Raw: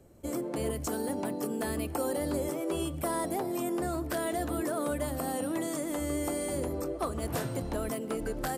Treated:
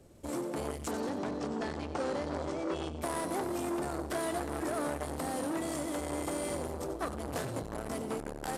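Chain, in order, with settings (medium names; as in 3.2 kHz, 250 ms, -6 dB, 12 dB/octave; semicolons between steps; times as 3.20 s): CVSD coder 64 kbps; 0.91–3.02 s: low-pass 6.5 kHz 24 dB/octave; two-band feedback delay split 860 Hz, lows 674 ms, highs 93 ms, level -11 dB; transformer saturation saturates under 900 Hz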